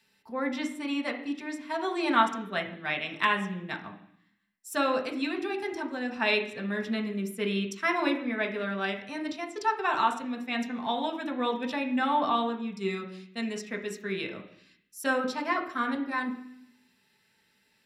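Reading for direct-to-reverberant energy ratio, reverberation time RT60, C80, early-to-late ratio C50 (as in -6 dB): 1.5 dB, 0.65 s, 12.5 dB, 9.5 dB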